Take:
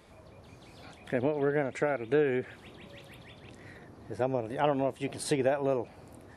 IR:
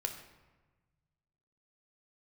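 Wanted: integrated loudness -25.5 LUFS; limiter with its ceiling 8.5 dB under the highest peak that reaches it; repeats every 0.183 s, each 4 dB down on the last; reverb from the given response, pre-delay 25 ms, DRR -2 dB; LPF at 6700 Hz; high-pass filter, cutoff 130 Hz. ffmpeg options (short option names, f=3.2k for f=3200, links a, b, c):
-filter_complex "[0:a]highpass=130,lowpass=6.7k,alimiter=limit=-22dB:level=0:latency=1,aecho=1:1:183|366|549|732|915|1098|1281|1464|1647:0.631|0.398|0.25|0.158|0.0994|0.0626|0.0394|0.0249|0.0157,asplit=2[a][b];[1:a]atrim=start_sample=2205,adelay=25[c];[b][c]afir=irnorm=-1:irlink=0,volume=1dB[d];[a][d]amix=inputs=2:normalize=0,volume=2.5dB"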